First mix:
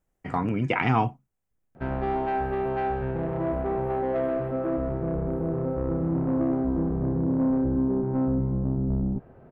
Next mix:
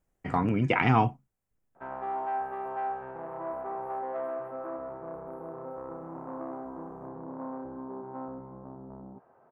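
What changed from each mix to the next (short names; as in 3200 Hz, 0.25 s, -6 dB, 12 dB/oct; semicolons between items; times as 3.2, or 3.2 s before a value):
second voice -3.5 dB; background: add band-pass 1000 Hz, Q 2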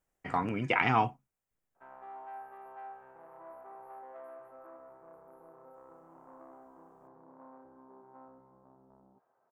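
background -11.0 dB; master: add low shelf 430 Hz -10 dB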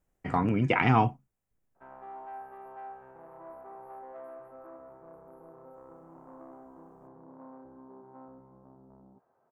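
master: add low shelf 430 Hz +10 dB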